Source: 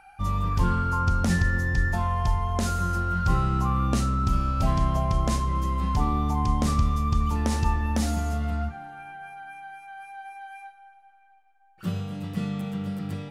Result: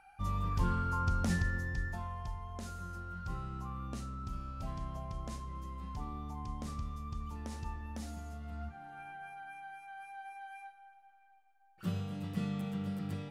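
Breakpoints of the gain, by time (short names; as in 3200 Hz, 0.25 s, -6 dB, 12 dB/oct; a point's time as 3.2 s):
1.3 s -8.5 dB
2.33 s -17.5 dB
8.43 s -17.5 dB
8.99 s -6.5 dB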